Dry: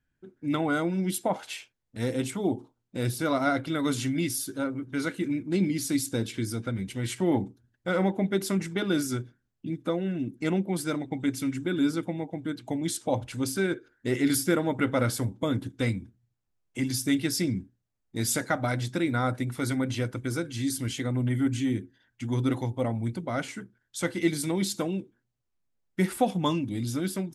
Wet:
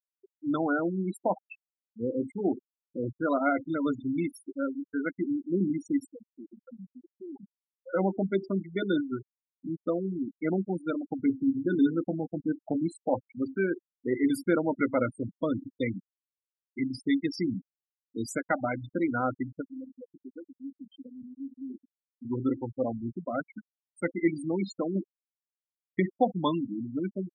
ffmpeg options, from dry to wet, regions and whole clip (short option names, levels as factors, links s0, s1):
-filter_complex "[0:a]asettb=1/sr,asplit=3[s0][s1][s2];[s0]atrim=end=6.074[s3];[s1]atrim=start=6.07:end=7.94,asetpts=PTS-STARTPTS,afade=t=in:d=0.004:c=qsin,afade=t=out:st=1.866:d=0.004:c=qsin,highpass=f=240:p=1,acompressor=threshold=0.0355:ratio=12:attack=3.2:release=140:knee=1:detection=peak,asoftclip=type=hard:threshold=0.015[s4];[s2]atrim=start=7.936[s5];[s3][s4]acrossfade=d=0.004:c1=hsin:c2=qsin[s6];[s6][s5]acrossfade=d=0.004:c1=qsin:c2=hsin,asettb=1/sr,asplit=3[s7][s8][s9];[s7]atrim=end=11.184[s10];[s8]atrim=start=11.18:end=12.87,asetpts=PTS-STARTPTS,afade=t=in:d=0.004:c=qsin,afade=t=out:st=1.686:d=0.004:c=qsin,lowshelf=f=390:g=4,acrusher=bits=5:mix=0:aa=0.5,asplit=2[s11][s12];[s12]adelay=26,volume=0.335[s13];[s11][s13]amix=inputs=2:normalize=0,atrim=end_sample=74529[s14];[s9]atrim=start=12.866[s15];[s10][s14]acrossfade=d=0.004:c1=hsin:c2=qsin[s16];[s16][s15]acrossfade=d=0.004:c1=qsin:c2=hsin,asettb=1/sr,asplit=3[s17][s18][s19];[s17]atrim=end=19.614[s20];[s18]atrim=start=19.61:end=22.25,asetpts=PTS-STARTPTS,afade=t=in:d=0.004:c=qsin,afade=t=out:st=2.636:d=0.004:c=qsin,acompressor=threshold=0.0178:ratio=5:attack=3.2:release=140:knee=1:detection=peak,asplit=7[s21][s22][s23][s24][s25][s26][s27];[s22]adelay=230,afreqshift=65,volume=0.126[s28];[s23]adelay=460,afreqshift=130,volume=0.0776[s29];[s24]adelay=690,afreqshift=195,volume=0.0484[s30];[s25]adelay=920,afreqshift=260,volume=0.0299[s31];[s26]adelay=1150,afreqshift=325,volume=0.0186[s32];[s27]adelay=1380,afreqshift=390,volume=0.0115[s33];[s21][s28][s29][s30][s31][s32][s33]amix=inputs=7:normalize=0,atrim=end_sample=116424[s34];[s19]atrim=start=22.246[s35];[s20][s34]acrossfade=d=0.004:c1=hsin:c2=qsin[s36];[s36][s35]acrossfade=d=0.004:c1=qsin:c2=hsin,asettb=1/sr,asplit=3[s37][s38][s39];[s37]atrim=end=24.954[s40];[s38]atrim=start=24.95:end=26,asetpts=PTS-STARTPTS,afade=t=in:d=0.004:c=qsin,afade=t=out:st=1.046:d=0.004:c=qsin,acrusher=bits=8:mix=0:aa=0.5,acontrast=37[s41];[s39]atrim=start=25.996[s42];[s40][s41]acrossfade=d=0.004:c1=hsin:c2=qsin[s43];[s43][s42]acrossfade=d=0.004:c1=qsin:c2=hsin,highpass=200,afftfilt=real='re*gte(hypot(re,im),0.0708)':imag='im*gte(hypot(re,im),0.0708)':win_size=1024:overlap=0.75,aemphasis=mode=reproduction:type=50fm"